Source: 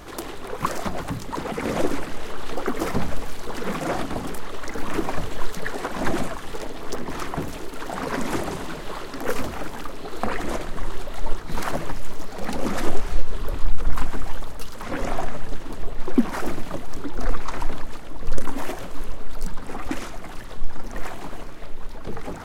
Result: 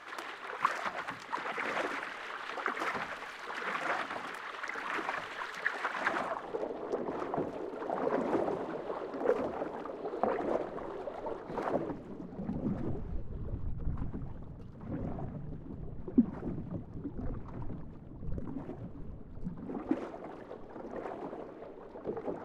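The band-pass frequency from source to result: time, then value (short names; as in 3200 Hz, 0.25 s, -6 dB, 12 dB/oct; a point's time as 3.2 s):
band-pass, Q 1.3
6.06 s 1700 Hz
6.54 s 510 Hz
11.62 s 510 Hz
12.53 s 130 Hz
19.38 s 130 Hz
20 s 440 Hz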